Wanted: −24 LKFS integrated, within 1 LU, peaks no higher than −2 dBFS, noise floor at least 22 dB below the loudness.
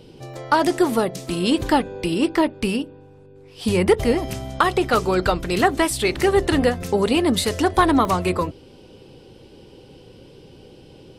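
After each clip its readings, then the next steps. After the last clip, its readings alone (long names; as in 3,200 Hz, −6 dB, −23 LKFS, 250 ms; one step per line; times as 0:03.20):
number of dropouts 2; longest dropout 1.1 ms; integrated loudness −20.5 LKFS; sample peak −5.5 dBFS; target loudness −24.0 LKFS
→ repair the gap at 0:00.34/0:08.05, 1.1 ms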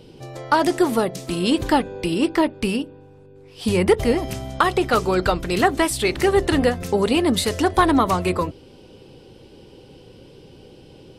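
number of dropouts 0; integrated loudness −20.5 LKFS; sample peak −5.5 dBFS; target loudness −24.0 LKFS
→ level −3.5 dB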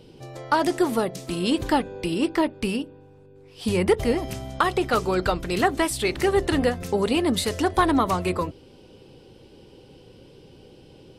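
integrated loudness −24.0 LKFS; sample peak −9.0 dBFS; background noise floor −50 dBFS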